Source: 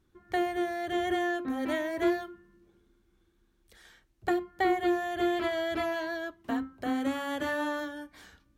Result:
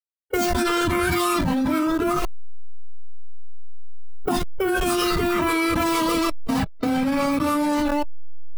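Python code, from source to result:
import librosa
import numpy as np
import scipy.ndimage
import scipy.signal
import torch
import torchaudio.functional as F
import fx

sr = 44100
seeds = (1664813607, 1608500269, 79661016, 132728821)

y = fx.delta_hold(x, sr, step_db=-33.5)
y = fx.rider(y, sr, range_db=10, speed_s=0.5)
y = fx.noise_reduce_blind(y, sr, reduce_db=14)
y = fx.formant_shift(y, sr, semitones=-6)
y = fx.env_flatten(y, sr, amount_pct=100)
y = y * 10.0 ** (3.5 / 20.0)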